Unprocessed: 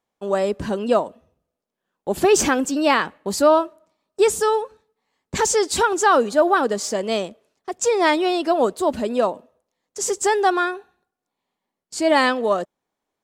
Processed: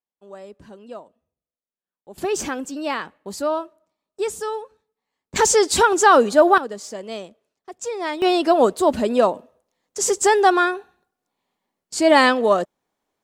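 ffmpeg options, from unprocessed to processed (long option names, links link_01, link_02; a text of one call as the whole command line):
ffmpeg -i in.wav -af "asetnsamples=nb_out_samples=441:pad=0,asendcmd='2.18 volume volume -8dB;5.36 volume volume 3dB;6.58 volume volume -9dB;8.22 volume volume 3dB',volume=-18.5dB" out.wav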